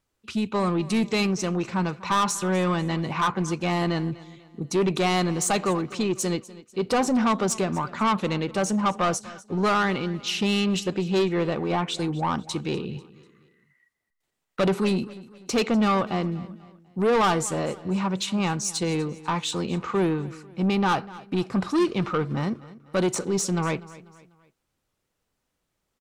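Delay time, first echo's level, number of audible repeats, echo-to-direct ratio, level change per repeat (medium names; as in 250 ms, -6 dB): 246 ms, -19.0 dB, 3, -18.0 dB, -7.5 dB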